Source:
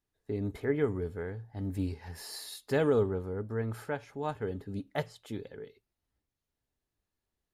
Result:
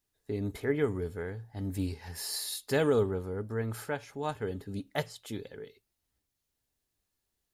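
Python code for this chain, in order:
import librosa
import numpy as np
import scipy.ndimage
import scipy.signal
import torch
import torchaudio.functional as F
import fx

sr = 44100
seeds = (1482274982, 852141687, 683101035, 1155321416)

y = fx.high_shelf(x, sr, hz=3200.0, db=9.5)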